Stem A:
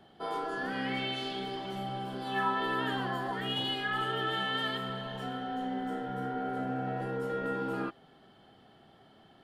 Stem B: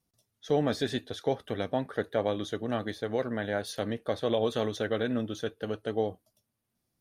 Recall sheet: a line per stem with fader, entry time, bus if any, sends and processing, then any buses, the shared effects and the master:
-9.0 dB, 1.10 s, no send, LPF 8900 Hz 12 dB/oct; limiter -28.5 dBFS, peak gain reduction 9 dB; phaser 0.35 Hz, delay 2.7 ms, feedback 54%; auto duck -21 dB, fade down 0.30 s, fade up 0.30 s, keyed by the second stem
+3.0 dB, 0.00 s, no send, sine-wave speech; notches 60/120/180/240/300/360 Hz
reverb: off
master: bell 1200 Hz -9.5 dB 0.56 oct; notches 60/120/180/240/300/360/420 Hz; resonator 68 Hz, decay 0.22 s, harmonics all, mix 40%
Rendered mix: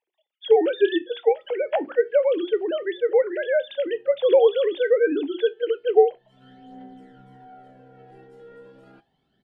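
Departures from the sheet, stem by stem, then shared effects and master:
stem B +3.0 dB -> +13.0 dB; master: missing notches 60/120/180/240/300/360/420 Hz

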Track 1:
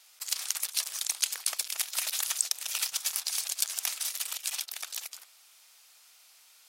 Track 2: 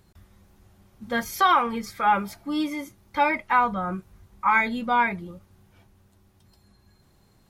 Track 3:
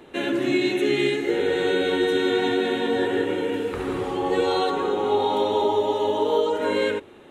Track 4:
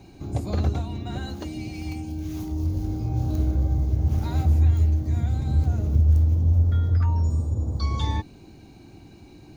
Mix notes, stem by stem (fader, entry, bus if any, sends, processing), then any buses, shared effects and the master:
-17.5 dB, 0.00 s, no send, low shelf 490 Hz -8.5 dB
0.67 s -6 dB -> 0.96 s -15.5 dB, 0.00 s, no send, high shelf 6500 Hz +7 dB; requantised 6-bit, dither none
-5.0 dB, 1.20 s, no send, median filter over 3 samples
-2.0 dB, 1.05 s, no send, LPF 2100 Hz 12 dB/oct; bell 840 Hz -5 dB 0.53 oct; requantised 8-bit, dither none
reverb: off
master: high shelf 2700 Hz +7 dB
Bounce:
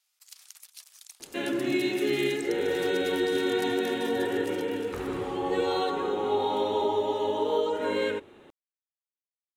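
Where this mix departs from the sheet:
stem 2: muted; stem 4: muted; master: missing high shelf 2700 Hz +7 dB

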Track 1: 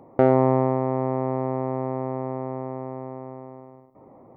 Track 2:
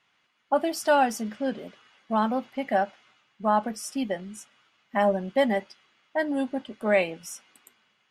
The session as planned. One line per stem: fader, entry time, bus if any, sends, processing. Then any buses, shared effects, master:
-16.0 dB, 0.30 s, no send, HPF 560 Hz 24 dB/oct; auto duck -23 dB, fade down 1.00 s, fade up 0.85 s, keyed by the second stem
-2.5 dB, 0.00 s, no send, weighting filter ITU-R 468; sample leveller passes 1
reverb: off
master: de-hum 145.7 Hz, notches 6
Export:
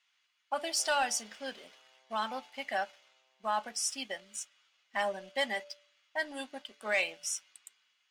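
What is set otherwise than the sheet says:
stem 1: entry 0.30 s -> 0.60 s; stem 2 -2.5 dB -> -10.5 dB

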